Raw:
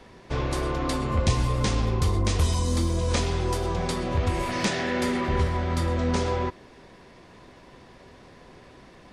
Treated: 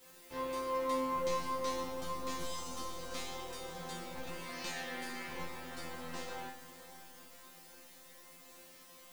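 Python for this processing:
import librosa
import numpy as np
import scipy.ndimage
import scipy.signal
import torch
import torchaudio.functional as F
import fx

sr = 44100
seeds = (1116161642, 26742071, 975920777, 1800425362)

p1 = np.minimum(x, 2.0 * 10.0 ** (-22.5 / 20.0) - x)
p2 = fx.low_shelf(p1, sr, hz=180.0, db=-11.0)
p3 = fx.quant_dither(p2, sr, seeds[0], bits=6, dither='triangular')
p4 = p2 + (p3 * librosa.db_to_amplitude(-7.0))
p5 = fx.resonator_bank(p4, sr, root=53, chord='fifth', decay_s=0.5)
p6 = fx.echo_diffused(p5, sr, ms=532, feedback_pct=44, wet_db=-13.0)
y = p6 * librosa.db_to_amplitude(2.0)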